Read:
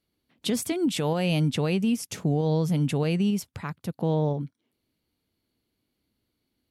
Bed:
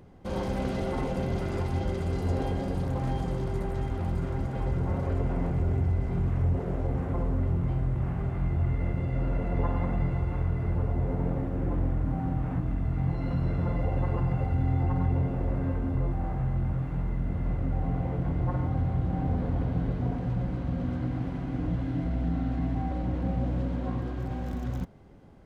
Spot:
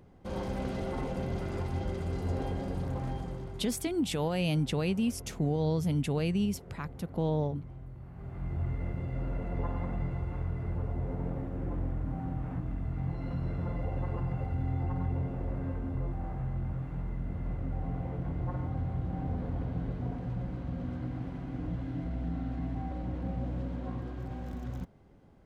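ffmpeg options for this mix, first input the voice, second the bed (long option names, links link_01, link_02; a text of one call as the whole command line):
ffmpeg -i stem1.wav -i stem2.wav -filter_complex "[0:a]adelay=3150,volume=-5dB[link_01];[1:a]volume=7dB,afade=type=out:start_time=2.93:duration=0.86:silence=0.223872,afade=type=in:start_time=8.11:duration=0.49:silence=0.266073[link_02];[link_01][link_02]amix=inputs=2:normalize=0" out.wav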